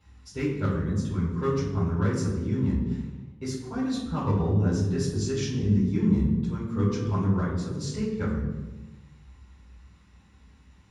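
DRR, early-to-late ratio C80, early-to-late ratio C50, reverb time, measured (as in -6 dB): -11.0 dB, 5.0 dB, 2.5 dB, 1.2 s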